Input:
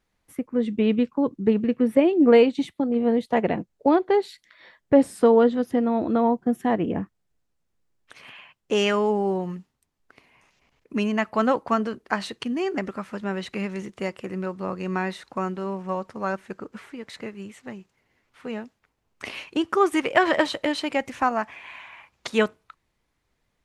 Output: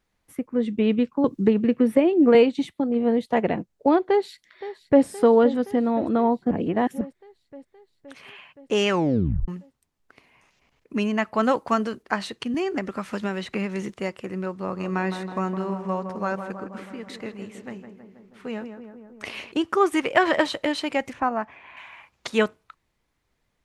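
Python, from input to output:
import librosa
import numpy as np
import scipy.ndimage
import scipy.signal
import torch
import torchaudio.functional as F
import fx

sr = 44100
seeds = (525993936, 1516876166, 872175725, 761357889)

y = fx.band_squash(x, sr, depth_pct=70, at=(1.24, 2.35))
y = fx.echo_throw(y, sr, start_s=4.03, length_s=1.01, ms=520, feedback_pct=70, wet_db=-14.5)
y = fx.high_shelf(y, sr, hz=4100.0, db=7.5, at=(11.43, 12.03))
y = fx.band_squash(y, sr, depth_pct=100, at=(12.54, 13.94))
y = fx.echo_filtered(y, sr, ms=161, feedback_pct=70, hz=1800.0, wet_db=-8, at=(14.59, 19.52))
y = fx.lowpass(y, sr, hz=1300.0, slope=6, at=(21.13, 21.77))
y = fx.edit(y, sr, fx.reverse_span(start_s=6.51, length_s=0.5),
    fx.tape_stop(start_s=8.89, length_s=0.59), tone=tone)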